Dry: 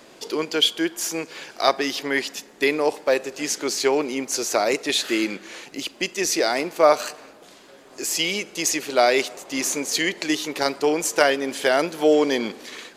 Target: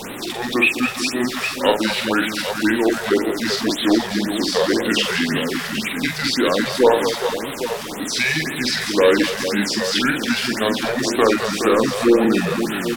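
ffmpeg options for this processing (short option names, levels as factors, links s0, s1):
-filter_complex "[0:a]aeval=exprs='val(0)+0.5*0.0355*sgn(val(0))':c=same,acrossover=split=6300[s0][s1];[s1]acompressor=threshold=0.0282:ratio=4:attack=1:release=60[s2];[s0][s2]amix=inputs=2:normalize=0,asplit=2[s3][s4];[s4]aeval=exprs='0.158*(abs(mod(val(0)/0.158+3,4)-2)-1)':c=same,volume=0.282[s5];[s3][s5]amix=inputs=2:normalize=0,asetrate=34006,aresample=44100,atempo=1.29684,aecho=1:1:45|212|419|811:0.562|0.355|0.398|0.376,afftfilt=real='re*(1-between(b*sr/1024,250*pow(6000/250,0.5+0.5*sin(2*PI*1.9*pts/sr))/1.41,250*pow(6000/250,0.5+0.5*sin(2*PI*1.9*pts/sr))*1.41))':imag='im*(1-between(b*sr/1024,250*pow(6000/250,0.5+0.5*sin(2*PI*1.9*pts/sr))/1.41,250*pow(6000/250,0.5+0.5*sin(2*PI*1.9*pts/sr))*1.41))':win_size=1024:overlap=0.75"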